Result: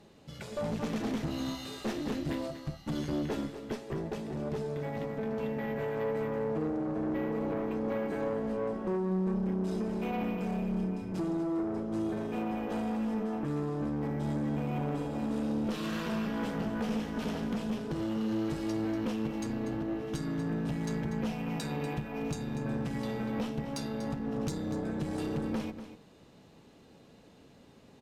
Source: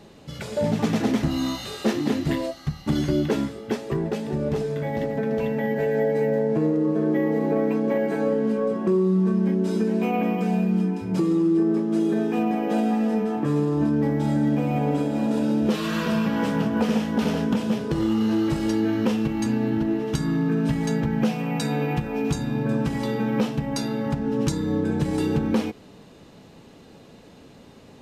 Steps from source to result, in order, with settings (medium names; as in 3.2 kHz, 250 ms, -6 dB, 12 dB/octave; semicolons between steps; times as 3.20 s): valve stage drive 21 dB, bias 0.6; delay 241 ms -11.5 dB; trim -6.5 dB